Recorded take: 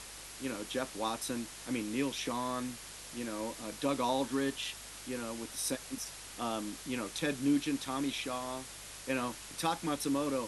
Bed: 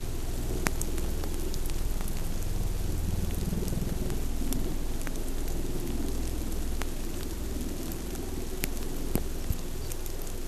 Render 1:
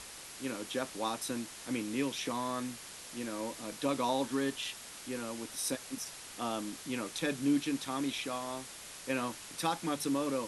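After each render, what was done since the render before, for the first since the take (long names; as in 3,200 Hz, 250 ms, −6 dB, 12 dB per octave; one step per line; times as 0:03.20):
hum removal 50 Hz, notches 3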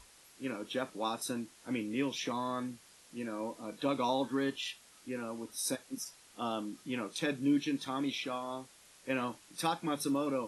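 noise reduction from a noise print 12 dB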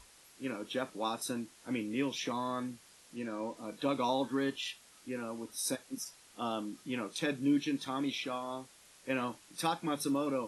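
0:03.16–0:03.57: low-pass filter 8,500 Hz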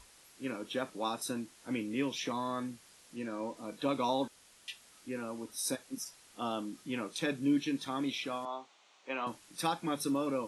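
0:04.28–0:04.68: fill with room tone
0:08.45–0:09.27: loudspeaker in its box 410–5,800 Hz, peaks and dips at 510 Hz −4 dB, 790 Hz +5 dB, 1,100 Hz +3 dB, 1,700 Hz −6 dB, 5,000 Hz −8 dB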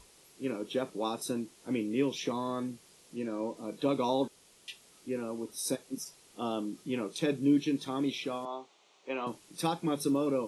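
graphic EQ with 15 bands 160 Hz +6 dB, 400 Hz +8 dB, 1,600 Hz −5 dB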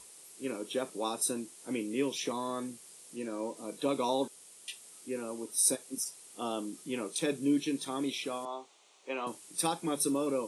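high-pass filter 270 Hz 6 dB per octave
parametric band 9,100 Hz +12.5 dB 0.72 octaves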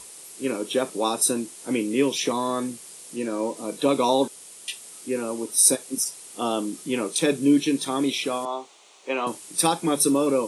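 level +10 dB
brickwall limiter −3 dBFS, peak gain reduction 1 dB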